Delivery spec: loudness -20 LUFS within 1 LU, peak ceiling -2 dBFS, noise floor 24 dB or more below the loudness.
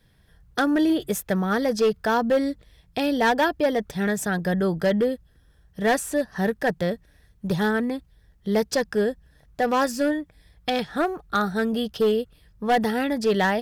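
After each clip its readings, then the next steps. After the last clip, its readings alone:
clipped 1.5%; flat tops at -15.0 dBFS; loudness -24.0 LUFS; peak -15.0 dBFS; loudness target -20.0 LUFS
-> clip repair -15 dBFS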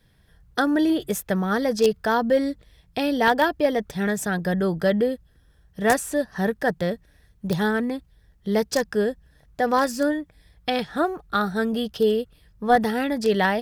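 clipped 0.0%; loudness -23.5 LUFS; peak -6.0 dBFS; loudness target -20.0 LUFS
-> gain +3.5 dB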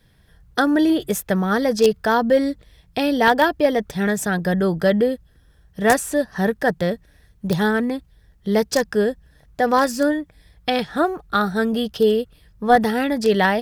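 loudness -20.0 LUFS; peak -2.5 dBFS; noise floor -55 dBFS

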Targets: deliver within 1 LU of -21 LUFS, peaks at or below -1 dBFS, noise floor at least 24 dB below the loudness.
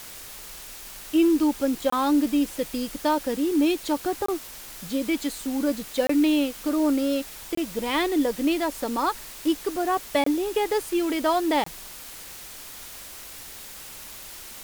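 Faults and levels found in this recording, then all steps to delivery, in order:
dropouts 6; longest dropout 24 ms; noise floor -41 dBFS; noise floor target -49 dBFS; loudness -25.0 LUFS; peak -9.5 dBFS; loudness target -21.0 LUFS
-> interpolate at 1.9/4.26/6.07/7.55/10.24/11.64, 24 ms; noise print and reduce 8 dB; gain +4 dB

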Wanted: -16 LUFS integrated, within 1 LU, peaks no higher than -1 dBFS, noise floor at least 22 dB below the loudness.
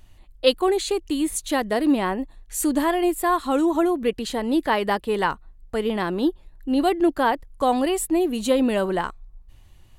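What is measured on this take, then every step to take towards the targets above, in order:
loudness -23.0 LUFS; peak -3.0 dBFS; loudness target -16.0 LUFS
-> gain +7 dB; limiter -1 dBFS

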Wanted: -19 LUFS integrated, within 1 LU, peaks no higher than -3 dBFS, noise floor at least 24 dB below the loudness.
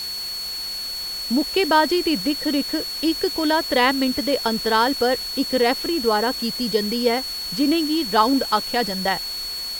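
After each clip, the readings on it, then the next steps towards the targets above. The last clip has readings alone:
steady tone 4400 Hz; tone level -27 dBFS; noise floor -29 dBFS; noise floor target -45 dBFS; loudness -21.0 LUFS; peak -3.0 dBFS; loudness target -19.0 LUFS
-> notch 4400 Hz, Q 30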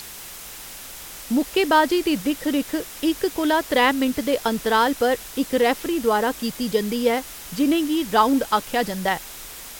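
steady tone none; noise floor -38 dBFS; noise floor target -46 dBFS
-> denoiser 8 dB, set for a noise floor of -38 dBFS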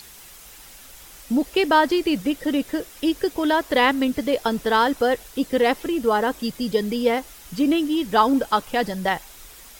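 noise floor -45 dBFS; noise floor target -46 dBFS
-> denoiser 6 dB, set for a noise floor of -45 dBFS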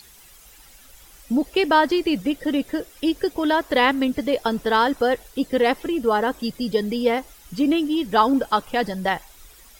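noise floor -49 dBFS; loudness -22.0 LUFS; peak -3.5 dBFS; loudness target -19.0 LUFS
-> gain +3 dB; limiter -3 dBFS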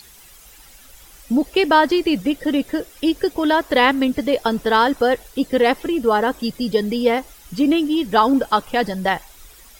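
loudness -19.0 LUFS; peak -3.0 dBFS; noise floor -46 dBFS

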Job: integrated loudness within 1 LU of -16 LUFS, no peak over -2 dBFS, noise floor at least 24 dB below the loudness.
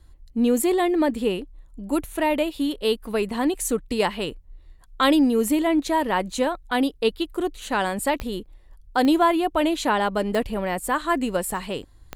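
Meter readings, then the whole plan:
clicks 4; loudness -23.5 LUFS; peak -8.0 dBFS; loudness target -16.0 LUFS
-> de-click; gain +7.5 dB; limiter -2 dBFS

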